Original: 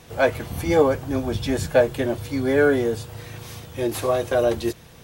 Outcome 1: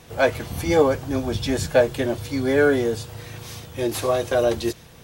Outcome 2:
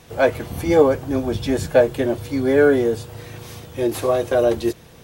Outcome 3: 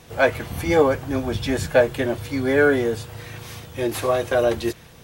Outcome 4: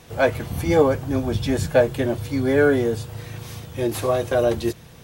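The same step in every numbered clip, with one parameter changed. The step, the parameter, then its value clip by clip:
dynamic equaliser, frequency: 5,200, 380, 1,900, 130 Hertz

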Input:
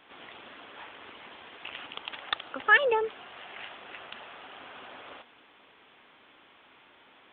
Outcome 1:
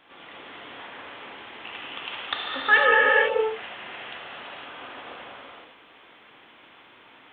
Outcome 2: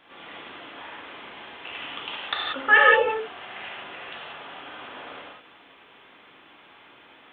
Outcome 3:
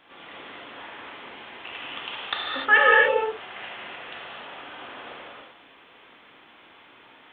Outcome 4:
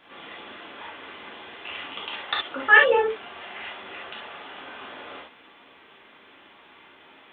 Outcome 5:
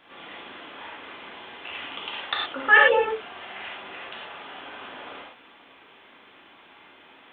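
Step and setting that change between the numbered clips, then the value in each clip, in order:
reverb whose tail is shaped and stops, gate: 530, 210, 330, 90, 140 milliseconds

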